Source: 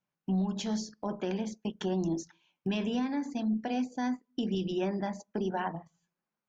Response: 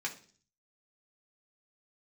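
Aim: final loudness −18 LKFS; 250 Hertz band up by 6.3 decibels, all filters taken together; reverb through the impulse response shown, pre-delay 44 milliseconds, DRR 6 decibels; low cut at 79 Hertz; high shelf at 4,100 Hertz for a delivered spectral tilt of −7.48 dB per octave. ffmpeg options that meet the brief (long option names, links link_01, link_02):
-filter_complex "[0:a]highpass=79,equalizer=frequency=250:width_type=o:gain=8,highshelf=frequency=4100:gain=-5,asplit=2[link_01][link_02];[1:a]atrim=start_sample=2205,adelay=44[link_03];[link_02][link_03]afir=irnorm=-1:irlink=0,volume=-9dB[link_04];[link_01][link_04]amix=inputs=2:normalize=0,volume=9dB"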